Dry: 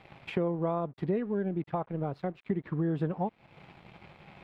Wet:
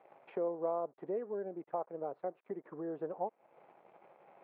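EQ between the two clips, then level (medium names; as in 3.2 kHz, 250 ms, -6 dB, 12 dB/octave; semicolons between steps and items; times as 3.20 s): ladder band-pass 660 Hz, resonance 30%; distance through air 81 m; +7.0 dB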